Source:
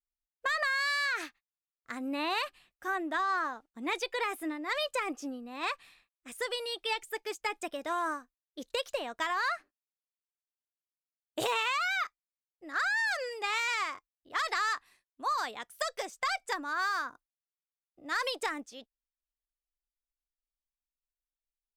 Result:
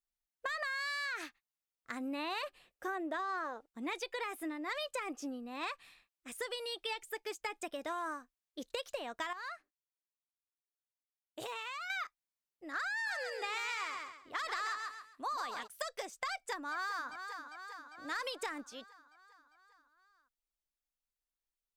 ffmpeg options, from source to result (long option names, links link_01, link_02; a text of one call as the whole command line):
ffmpeg -i in.wav -filter_complex "[0:a]asettb=1/sr,asplit=3[link_01][link_02][link_03];[link_01]atrim=end=2.434[link_04];[link_02]atrim=start=2.43:end=3.68,asetpts=PTS-STARTPTS,afade=type=in:duration=0.004:curve=qsin,afade=type=out:start_time=1.246:duration=0.004:curve=qsin,equalizer=frequency=500:width_type=o:width=0.77:gain=11.5[link_05];[link_03]atrim=start=3.676[link_06];[link_04][link_05]acrossfade=duration=0.004:curve1=hsin:curve2=qsin[link_07];[link_07][link_06]acrossfade=duration=0.004:curve1=qsin:curve2=hsin,asplit=3[link_08][link_09][link_10];[link_08]afade=type=out:start_time=13.05:duration=0.02[link_11];[link_09]aecho=1:1:134|268|402:0.473|0.128|0.0345,afade=type=in:start_time=13.05:duration=0.02,afade=type=out:start_time=15.66:duration=0.02[link_12];[link_10]afade=type=in:start_time=15.66:duration=0.02[link_13];[link_11][link_12][link_13]amix=inputs=3:normalize=0,asplit=2[link_14][link_15];[link_15]afade=type=in:start_time=16.31:duration=0.01,afade=type=out:start_time=17.08:duration=0.01,aecho=0:1:400|800|1200|1600|2000|2400|2800|3200:0.223872|0.145517|0.094586|0.0614809|0.0399626|0.0259757|0.0168842|0.0109747[link_16];[link_14][link_16]amix=inputs=2:normalize=0,asplit=3[link_17][link_18][link_19];[link_17]atrim=end=9.332[link_20];[link_18]atrim=start=9.328:end=11.902,asetpts=PTS-STARTPTS,volume=-10.5dB[link_21];[link_19]atrim=start=11.898[link_22];[link_20][link_21]acrossfade=duration=0.004:curve1=hsin:curve2=hsin[link_23];[link_23][link_22]acrossfade=duration=0.004:curve1=hsin:curve2=hsin,acompressor=threshold=-36dB:ratio=3,volume=-1dB" out.wav